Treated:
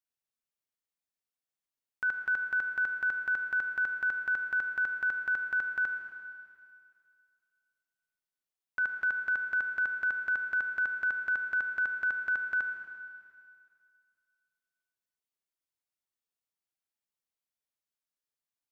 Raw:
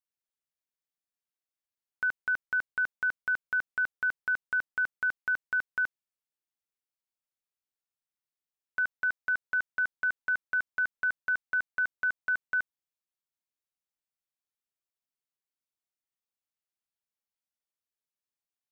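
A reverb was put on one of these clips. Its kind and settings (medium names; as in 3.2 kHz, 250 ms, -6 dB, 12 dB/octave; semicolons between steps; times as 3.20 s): Schroeder reverb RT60 2.2 s, combs from 26 ms, DRR 5 dB; trim -2.5 dB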